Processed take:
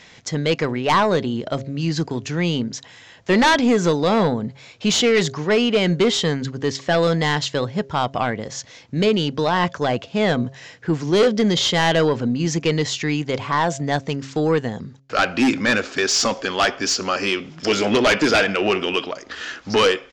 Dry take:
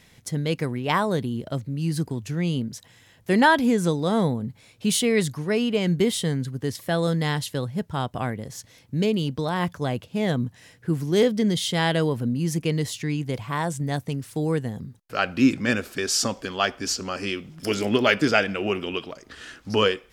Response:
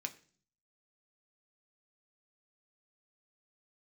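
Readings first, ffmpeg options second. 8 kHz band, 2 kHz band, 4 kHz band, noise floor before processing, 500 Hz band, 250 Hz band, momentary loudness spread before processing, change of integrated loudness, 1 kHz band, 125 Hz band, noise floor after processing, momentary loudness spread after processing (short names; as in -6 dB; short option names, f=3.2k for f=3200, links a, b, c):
+4.0 dB, +5.5 dB, +7.0 dB, -56 dBFS, +6.0 dB, +3.0 dB, 11 LU, +4.5 dB, +6.0 dB, +1.5 dB, -46 dBFS, 9 LU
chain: -filter_complex "[0:a]aresample=16000,aresample=44100,highshelf=f=3.2k:g=12,asplit=2[a][b];[b]highpass=f=720:p=1,volume=15dB,asoftclip=type=tanh:threshold=-0.5dB[c];[a][c]amix=inputs=2:normalize=0,lowpass=f=1.1k:p=1,volume=-6dB,aeval=exprs='0.631*sin(PI/2*2.24*val(0)/0.631)':c=same,bandreject=f=135.5:t=h:w=4,bandreject=f=271:t=h:w=4,bandreject=f=406.5:t=h:w=4,bandreject=f=542:t=h:w=4,bandreject=f=677.5:t=h:w=4,volume=-7dB"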